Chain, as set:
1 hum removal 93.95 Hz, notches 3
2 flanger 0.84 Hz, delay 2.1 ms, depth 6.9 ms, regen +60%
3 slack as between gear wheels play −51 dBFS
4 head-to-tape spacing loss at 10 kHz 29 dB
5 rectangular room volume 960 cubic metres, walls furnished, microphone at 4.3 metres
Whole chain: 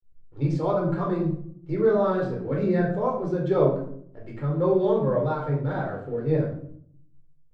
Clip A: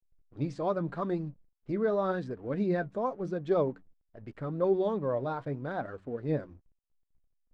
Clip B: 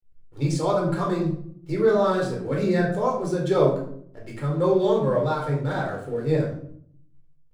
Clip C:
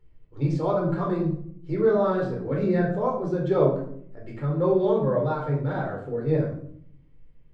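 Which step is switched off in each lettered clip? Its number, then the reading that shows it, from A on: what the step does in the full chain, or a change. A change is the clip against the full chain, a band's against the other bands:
5, echo-to-direct ratio 1.5 dB to none audible
4, 2 kHz band +3.5 dB
3, distortion level −27 dB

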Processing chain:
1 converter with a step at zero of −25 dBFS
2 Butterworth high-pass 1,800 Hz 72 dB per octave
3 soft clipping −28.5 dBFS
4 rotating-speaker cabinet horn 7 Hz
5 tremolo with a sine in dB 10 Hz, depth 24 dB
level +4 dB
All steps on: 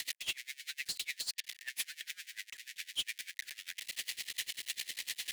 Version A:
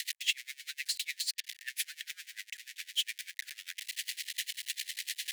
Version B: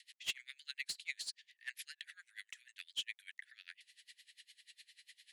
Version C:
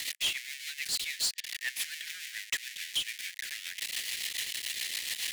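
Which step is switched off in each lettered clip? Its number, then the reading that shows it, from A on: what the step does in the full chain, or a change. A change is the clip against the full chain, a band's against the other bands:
3, distortion level −10 dB
1, distortion level −9 dB
5, change in crest factor −4.0 dB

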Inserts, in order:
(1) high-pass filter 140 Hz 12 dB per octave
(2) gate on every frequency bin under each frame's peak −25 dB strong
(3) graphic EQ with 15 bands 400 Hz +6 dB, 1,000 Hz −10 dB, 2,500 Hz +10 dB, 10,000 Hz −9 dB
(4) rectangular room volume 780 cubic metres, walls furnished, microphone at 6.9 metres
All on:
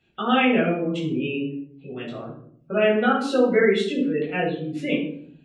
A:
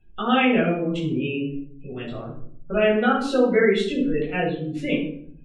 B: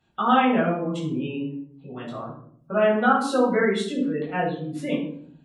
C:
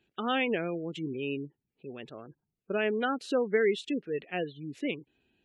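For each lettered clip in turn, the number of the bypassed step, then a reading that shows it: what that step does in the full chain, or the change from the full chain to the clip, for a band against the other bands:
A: 1, 125 Hz band +2.0 dB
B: 3, change in crest factor +2.0 dB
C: 4, echo-to-direct ratio 6.0 dB to none audible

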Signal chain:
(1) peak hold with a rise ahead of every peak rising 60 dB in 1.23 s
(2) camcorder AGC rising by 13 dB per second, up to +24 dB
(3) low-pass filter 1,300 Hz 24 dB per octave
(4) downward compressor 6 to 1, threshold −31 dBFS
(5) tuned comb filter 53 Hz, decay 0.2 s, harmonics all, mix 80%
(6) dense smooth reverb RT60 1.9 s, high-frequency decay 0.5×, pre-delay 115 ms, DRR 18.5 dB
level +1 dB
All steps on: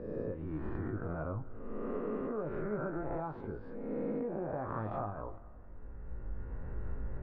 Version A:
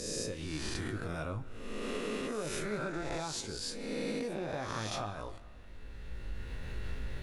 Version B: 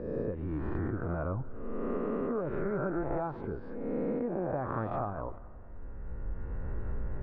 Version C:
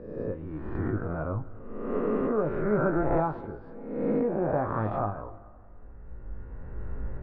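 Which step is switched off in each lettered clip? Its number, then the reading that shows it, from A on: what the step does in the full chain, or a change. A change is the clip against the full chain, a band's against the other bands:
3, 2 kHz band +9.0 dB
5, change in integrated loudness +4.0 LU
4, average gain reduction 5.0 dB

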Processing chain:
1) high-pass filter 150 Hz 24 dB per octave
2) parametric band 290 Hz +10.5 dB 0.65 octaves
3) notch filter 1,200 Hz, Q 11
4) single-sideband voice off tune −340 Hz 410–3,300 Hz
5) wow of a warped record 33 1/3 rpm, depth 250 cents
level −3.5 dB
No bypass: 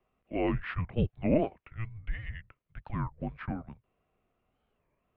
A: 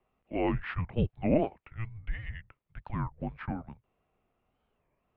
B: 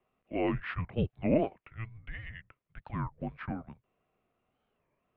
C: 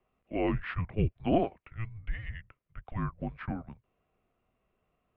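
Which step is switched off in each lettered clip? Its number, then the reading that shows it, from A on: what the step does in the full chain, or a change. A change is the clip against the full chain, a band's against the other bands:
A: 3, 1 kHz band +1.5 dB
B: 2, 125 Hz band −2.0 dB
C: 5, 1 kHz band +3.0 dB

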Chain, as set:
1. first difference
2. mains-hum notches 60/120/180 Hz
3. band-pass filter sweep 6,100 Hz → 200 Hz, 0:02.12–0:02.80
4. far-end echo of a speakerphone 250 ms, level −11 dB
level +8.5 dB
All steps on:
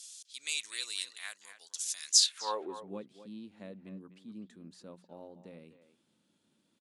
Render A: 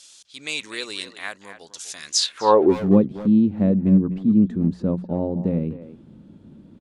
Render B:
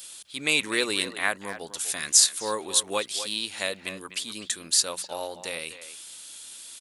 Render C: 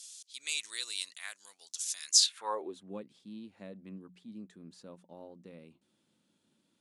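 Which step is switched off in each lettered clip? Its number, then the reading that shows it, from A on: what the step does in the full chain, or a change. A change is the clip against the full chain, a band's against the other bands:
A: 1, 8 kHz band −19.5 dB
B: 3, 2 kHz band +7.5 dB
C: 4, echo-to-direct ratio −13.5 dB to none audible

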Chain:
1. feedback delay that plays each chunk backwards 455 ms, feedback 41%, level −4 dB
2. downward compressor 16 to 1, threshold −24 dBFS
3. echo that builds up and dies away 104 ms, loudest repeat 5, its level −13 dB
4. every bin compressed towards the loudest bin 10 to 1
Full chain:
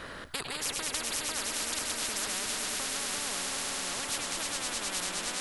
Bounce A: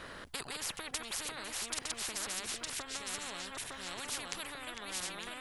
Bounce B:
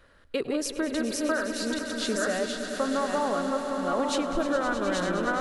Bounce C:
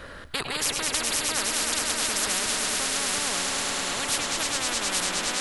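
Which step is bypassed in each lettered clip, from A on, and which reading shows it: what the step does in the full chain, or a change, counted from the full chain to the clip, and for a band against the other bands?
3, change in momentary loudness spread +3 LU
4, 8 kHz band −15.5 dB
2, average gain reduction 3.5 dB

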